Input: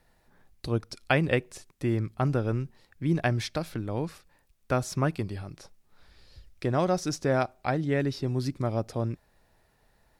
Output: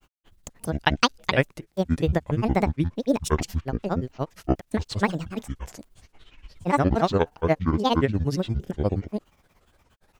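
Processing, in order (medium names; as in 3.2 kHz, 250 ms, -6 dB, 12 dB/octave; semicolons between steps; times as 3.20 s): granulator 86 ms, grains 17 per s, spray 284 ms, pitch spread up and down by 12 st; trim +6.5 dB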